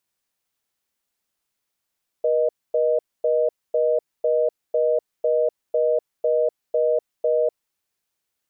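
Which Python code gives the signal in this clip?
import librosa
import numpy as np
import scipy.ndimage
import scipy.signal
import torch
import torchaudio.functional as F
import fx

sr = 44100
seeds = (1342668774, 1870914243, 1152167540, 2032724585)

y = fx.call_progress(sr, length_s=5.48, kind='reorder tone', level_db=-19.5)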